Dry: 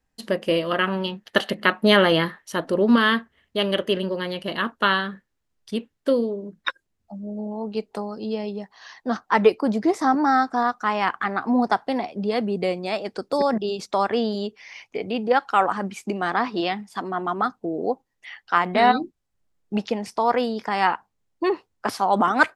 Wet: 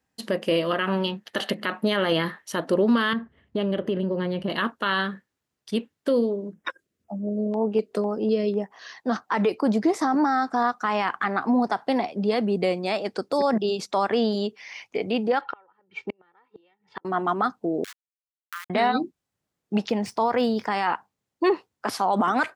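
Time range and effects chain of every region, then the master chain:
3.13–4.50 s: tilt EQ -3.5 dB/octave + compression 4:1, threshold -24 dBFS
6.54–8.94 s: peaking EQ 420 Hz +6.5 dB 1.8 oct + LFO notch square 2 Hz 850–4200 Hz
15.41–17.05 s: low-pass 3.3 kHz 24 dB/octave + comb 2.2 ms, depth 77% + inverted gate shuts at -19 dBFS, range -41 dB
17.84–18.70 s: send-on-delta sampling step -20 dBFS + steep high-pass 1.2 kHz 48 dB/octave + compression 2:1, threshold -45 dBFS
19.89–20.68 s: median filter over 3 samples + peaking EQ 93 Hz +10.5 dB 1.4 oct
whole clip: peak limiter -14.5 dBFS; high-pass 100 Hz; trim +1.5 dB

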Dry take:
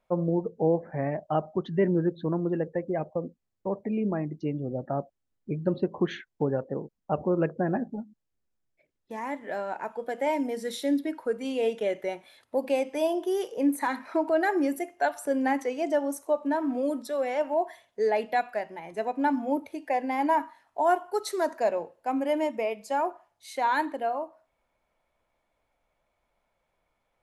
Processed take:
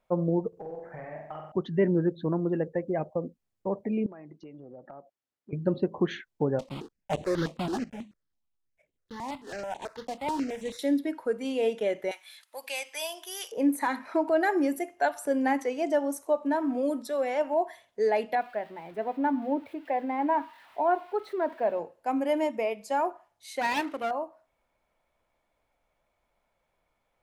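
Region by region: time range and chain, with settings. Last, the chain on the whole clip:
0.48–1.52 s: compression 10:1, threshold -31 dBFS + peaking EQ 230 Hz -11 dB 2.1 oct + flutter echo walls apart 7.9 m, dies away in 0.77 s
4.06–5.53 s: high-pass 560 Hz 6 dB/octave + compression 8:1, threshold -42 dBFS + treble shelf 6.1 kHz -9.5 dB
6.59–10.79 s: block-companded coder 3-bit + distance through air 70 m + stepped phaser 9.2 Hz 410–5000 Hz
12.11–13.52 s: high-pass 1.3 kHz + treble shelf 2.4 kHz +9.5 dB
18.35–21.79 s: zero-crossing glitches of -31 dBFS + distance through air 500 m
23.61–24.11 s: comb filter that takes the minimum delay 0.33 ms + high-pass 180 Hz
whole clip: none

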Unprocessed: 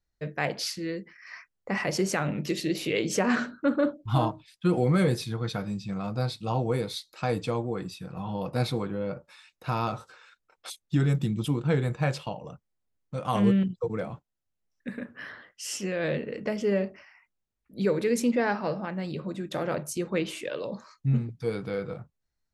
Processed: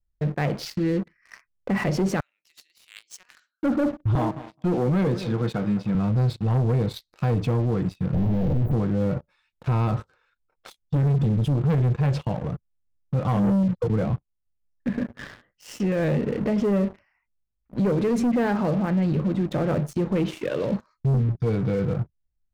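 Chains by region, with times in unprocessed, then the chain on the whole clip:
2.20–3.63 s: Bessel high-pass 2.1 kHz + differentiator
4.15–5.95 s: band-pass 220–5500 Hz + tape echo 209 ms, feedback 34%, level -18 dB, low-pass 1.8 kHz
8.14–8.73 s: one-bit comparator + inverse Chebyshev band-stop 1.9–7.5 kHz, stop band 60 dB
whole clip: RIAA curve playback; waveshaping leveller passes 3; peak limiter -12 dBFS; trim -5.5 dB

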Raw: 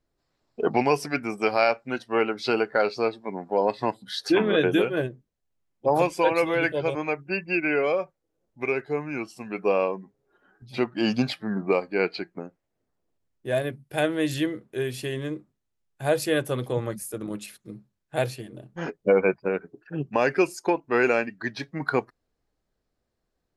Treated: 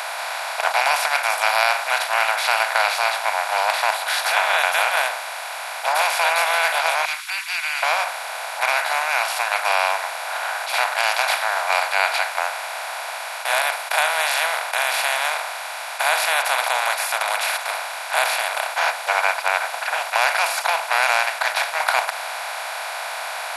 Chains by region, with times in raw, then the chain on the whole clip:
7.05–7.83 s: steep high-pass 2.9 kHz + comb 0.9 ms, depth 30%
whole clip: spectral levelling over time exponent 0.2; elliptic high-pass 700 Hz, stop band 50 dB; treble shelf 8.1 kHz +8.5 dB; trim -1 dB

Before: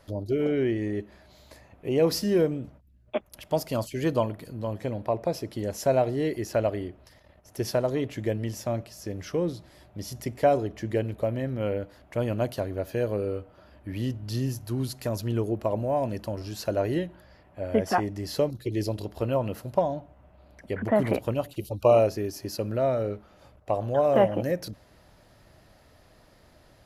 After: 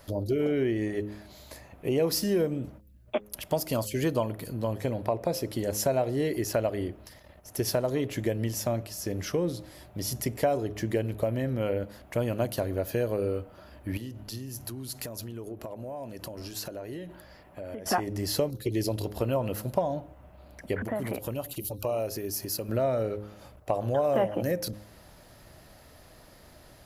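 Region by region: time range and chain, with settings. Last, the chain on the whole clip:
13.97–17.86 s: peaking EQ 87 Hz -4.5 dB 1.4 oct + compression 12:1, threshold -38 dBFS
20.82–22.69 s: treble shelf 9.1 kHz +8.5 dB + compression 2:1, threshold -39 dBFS
whole clip: treble shelf 9.6 kHz +11.5 dB; de-hum 104.3 Hz, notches 5; compression 2.5:1, threshold -29 dBFS; trim +3.5 dB

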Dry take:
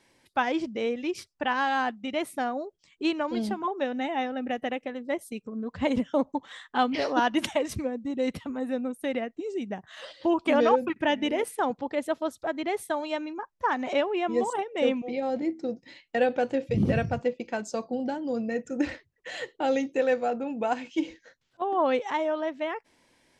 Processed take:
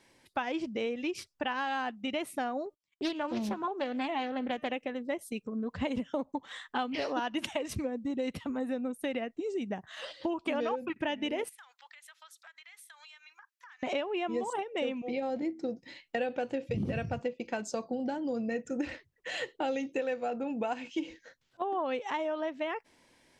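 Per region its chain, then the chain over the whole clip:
2.66–4.72 s: de-hum 302 Hz, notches 24 + gate -58 dBFS, range -29 dB + loudspeaker Doppler distortion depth 0.34 ms
11.49–13.83 s: high-pass 1.5 kHz 24 dB/octave + compression 16:1, threshold -49 dBFS
whole clip: dynamic bell 2.7 kHz, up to +5 dB, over -51 dBFS, Q 4.8; compression 5:1, threshold -30 dBFS

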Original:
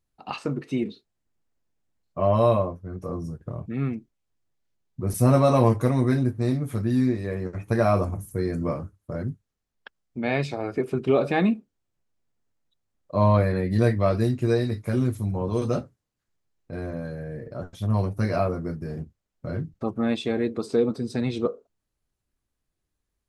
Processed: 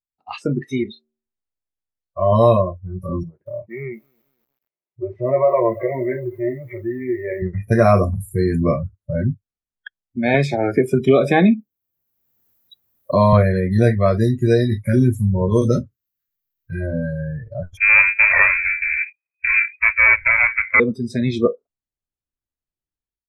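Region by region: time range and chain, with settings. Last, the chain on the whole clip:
0.71–2.32 s: peaking EQ 200 Hz -7 dB 1.6 oct + de-hum 76.11 Hz, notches 22
3.23–7.42 s: compression 2:1, threshold -33 dBFS + cabinet simulation 200–2700 Hz, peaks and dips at 250 Hz -8 dB, 360 Hz +7 dB, 600 Hz +8 dB, 970 Hz +4 dB, 1.5 kHz -4 dB, 2.1 kHz +9 dB + bit-crushed delay 231 ms, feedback 55%, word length 8-bit, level -15 dB
10.34–13.33 s: high-pass 58 Hz + treble shelf 5.4 kHz +6.5 dB + three bands compressed up and down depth 70%
15.71–16.81 s: peaking EQ 720 Hz -11.5 dB 0.86 oct + tape noise reduction on one side only encoder only
17.77–20.80 s: square wave that keeps the level + frequency inversion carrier 2.5 kHz
whole clip: treble shelf 9 kHz -4.5 dB; spectral noise reduction 23 dB; level rider gain up to 10.5 dB

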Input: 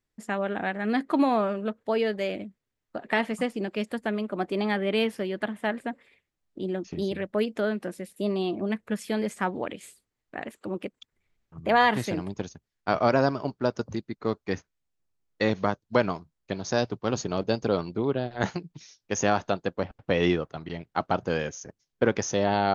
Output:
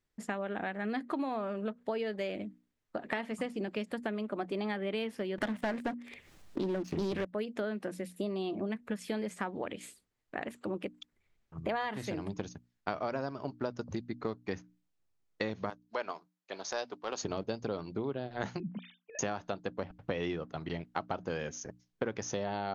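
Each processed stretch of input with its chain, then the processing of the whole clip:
5.38–7.25 s: waveshaping leveller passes 3 + upward compressor, threshold -30 dBFS + loudspeaker Doppler distortion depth 0.22 ms
15.70–17.23 s: high-pass 520 Hz + transient shaper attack -7 dB, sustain -3 dB
18.60–19.19 s: formants replaced by sine waves + compressor with a negative ratio -36 dBFS, ratio -0.5
whole clip: treble shelf 9.5 kHz -5.5 dB; hum notches 60/120/180/240/300 Hz; compression, threshold -32 dBFS

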